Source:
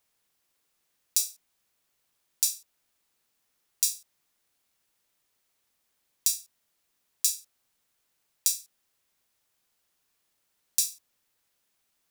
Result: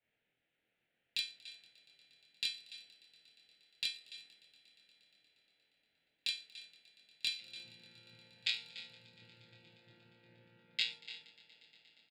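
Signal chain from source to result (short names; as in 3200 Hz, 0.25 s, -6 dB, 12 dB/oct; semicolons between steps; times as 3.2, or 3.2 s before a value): 7.38–10.91 chord vocoder bare fifth, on A#2; LPF 3800 Hz 24 dB/oct; low shelf 220 Hz -11 dB; notch 370 Hz, Q 12; echo 0.289 s -17 dB; compressor 3:1, threshold -57 dBFS, peak gain reduction 17 dB; bell 140 Hz +4.5 dB 1.1 oct; fixed phaser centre 2600 Hz, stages 4; doubler 25 ms -2.5 dB; swelling echo 0.118 s, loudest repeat 5, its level -16.5 dB; three-band expander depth 100%; gain +14 dB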